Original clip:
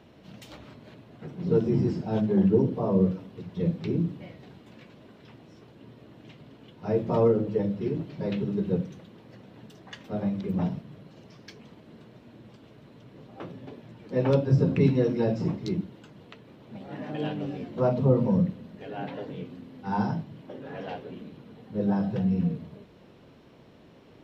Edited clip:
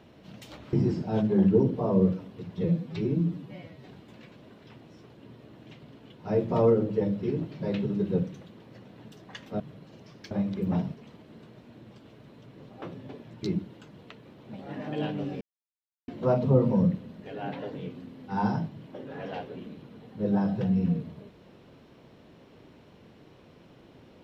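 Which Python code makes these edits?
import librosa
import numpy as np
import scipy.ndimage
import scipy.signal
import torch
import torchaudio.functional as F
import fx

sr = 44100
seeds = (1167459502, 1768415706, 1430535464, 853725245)

y = fx.edit(x, sr, fx.cut(start_s=0.73, length_s=0.99),
    fx.stretch_span(start_s=3.63, length_s=0.82, factor=1.5),
    fx.move(start_s=10.18, length_s=0.66, to_s=11.55),
    fx.cut(start_s=14.01, length_s=1.64),
    fx.insert_silence(at_s=17.63, length_s=0.67), tone=tone)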